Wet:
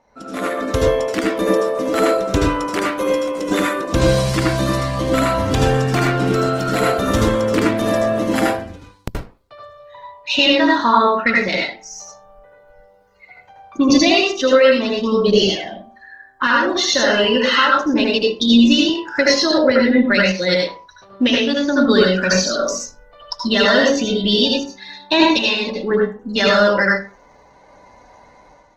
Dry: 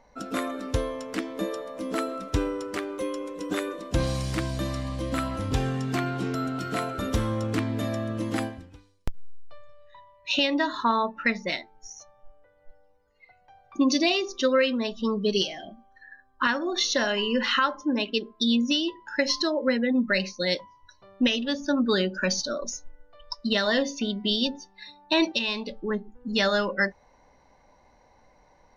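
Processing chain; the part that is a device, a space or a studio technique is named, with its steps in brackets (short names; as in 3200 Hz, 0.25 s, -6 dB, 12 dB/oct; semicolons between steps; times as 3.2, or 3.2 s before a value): far-field microphone of a smart speaker (reverb RT60 0.35 s, pre-delay 73 ms, DRR -2.5 dB; HPF 87 Hz 6 dB/oct; AGC gain up to 9.5 dB; Opus 16 kbps 48000 Hz)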